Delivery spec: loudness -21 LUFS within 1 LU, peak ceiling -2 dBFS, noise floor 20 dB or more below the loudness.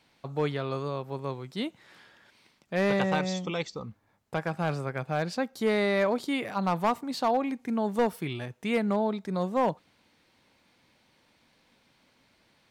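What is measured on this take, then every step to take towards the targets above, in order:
clipped 0.4%; flat tops at -18.0 dBFS; loudness -29.5 LUFS; peak -18.0 dBFS; loudness target -21.0 LUFS
-> clip repair -18 dBFS; gain +8.5 dB

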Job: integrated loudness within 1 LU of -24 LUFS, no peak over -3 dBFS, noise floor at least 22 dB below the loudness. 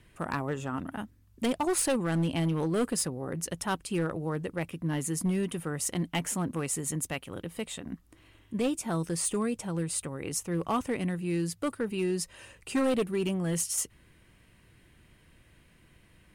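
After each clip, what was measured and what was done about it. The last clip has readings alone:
clipped 1.4%; flat tops at -22.5 dBFS; loudness -31.5 LUFS; peak -22.5 dBFS; loudness target -24.0 LUFS
-> clip repair -22.5 dBFS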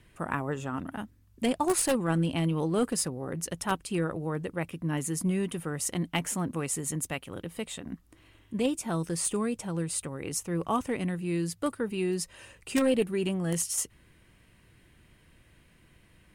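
clipped 0.0%; loudness -30.5 LUFS; peak -13.5 dBFS; loudness target -24.0 LUFS
-> gain +6.5 dB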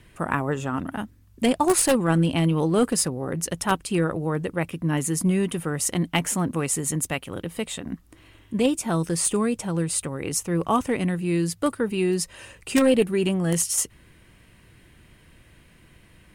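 loudness -24.0 LUFS; peak -7.0 dBFS; noise floor -55 dBFS

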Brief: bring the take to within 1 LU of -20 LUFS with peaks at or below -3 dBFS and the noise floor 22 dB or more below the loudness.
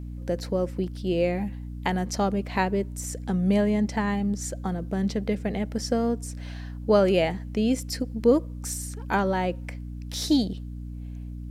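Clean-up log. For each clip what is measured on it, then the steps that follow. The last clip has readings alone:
hum 60 Hz; harmonics up to 300 Hz; hum level -33 dBFS; loudness -26.5 LUFS; peak -8.5 dBFS; loudness target -20.0 LUFS
-> de-hum 60 Hz, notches 5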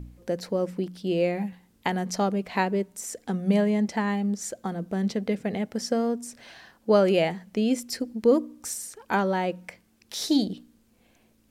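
hum none; loudness -27.0 LUFS; peak -8.5 dBFS; loudness target -20.0 LUFS
-> gain +7 dB; limiter -3 dBFS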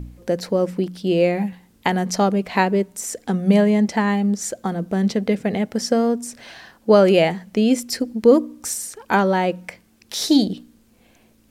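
loudness -20.0 LUFS; peak -3.0 dBFS; noise floor -56 dBFS

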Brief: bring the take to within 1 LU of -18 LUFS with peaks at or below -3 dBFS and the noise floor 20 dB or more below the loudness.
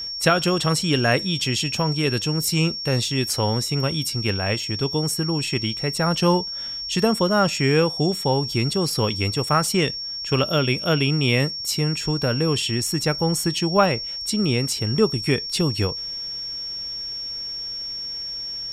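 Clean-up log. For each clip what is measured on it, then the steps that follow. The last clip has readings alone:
steady tone 5500 Hz; tone level -28 dBFS; loudness -22.0 LUFS; peak -5.0 dBFS; loudness target -18.0 LUFS
-> notch 5500 Hz, Q 30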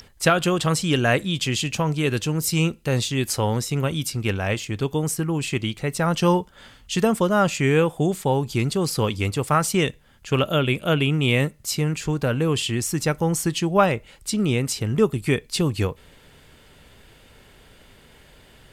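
steady tone none; loudness -22.5 LUFS; peak -5.5 dBFS; loudness target -18.0 LUFS
-> gain +4.5 dB; limiter -3 dBFS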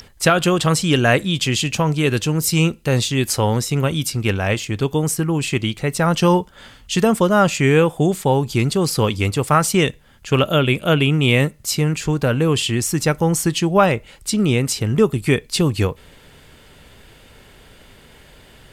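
loudness -18.0 LUFS; peak -3.0 dBFS; noise floor -48 dBFS

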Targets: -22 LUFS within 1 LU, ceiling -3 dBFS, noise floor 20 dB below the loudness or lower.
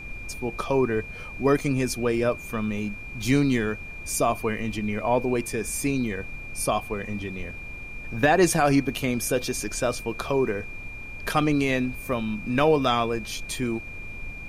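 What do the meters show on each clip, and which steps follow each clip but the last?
steady tone 2400 Hz; tone level -38 dBFS; noise floor -38 dBFS; noise floor target -46 dBFS; loudness -25.5 LUFS; peak -8.0 dBFS; loudness target -22.0 LUFS
-> notch 2400 Hz, Q 30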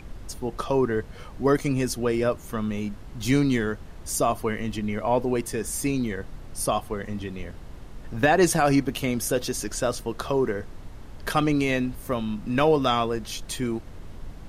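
steady tone none; noise floor -42 dBFS; noise floor target -46 dBFS
-> noise print and reduce 6 dB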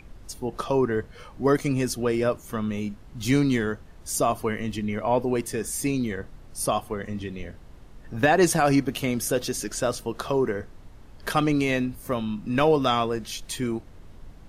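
noise floor -47 dBFS; loudness -25.5 LUFS; peak -8.0 dBFS; loudness target -22.0 LUFS
-> gain +3.5 dB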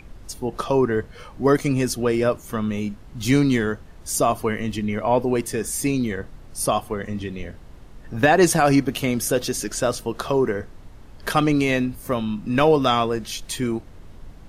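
loudness -22.0 LUFS; peak -4.5 dBFS; noise floor -43 dBFS

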